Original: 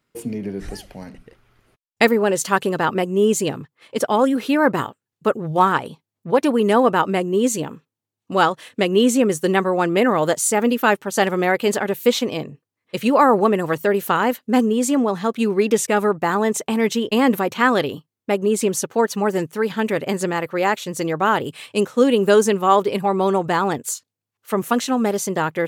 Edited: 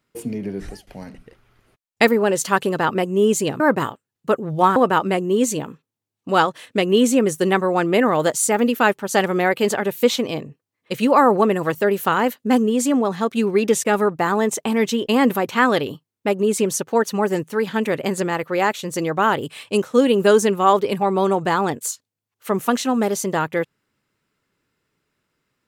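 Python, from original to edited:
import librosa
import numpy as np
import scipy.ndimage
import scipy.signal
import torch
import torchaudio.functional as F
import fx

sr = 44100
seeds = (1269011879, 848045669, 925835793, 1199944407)

y = fx.edit(x, sr, fx.fade_out_to(start_s=0.62, length_s=0.25, floor_db=-18.5),
    fx.cut(start_s=3.6, length_s=0.97),
    fx.cut(start_s=5.73, length_s=1.06), tone=tone)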